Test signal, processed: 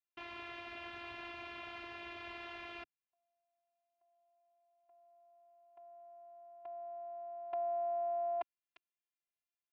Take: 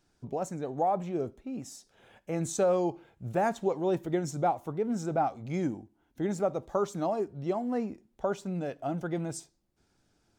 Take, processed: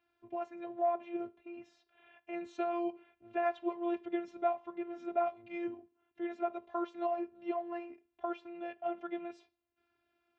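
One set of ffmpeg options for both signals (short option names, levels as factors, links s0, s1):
-af "afftfilt=real='hypot(re,im)*cos(PI*b)':imag='0':win_size=512:overlap=0.75,highpass=120,equalizer=f=140:t=q:w=4:g=-5,equalizer=f=210:t=q:w=4:g=-7,equalizer=f=300:t=q:w=4:g=-8,equalizer=f=480:t=q:w=4:g=-5,equalizer=f=2600:t=q:w=4:g=6,lowpass=f=3200:w=0.5412,lowpass=f=3200:w=1.3066"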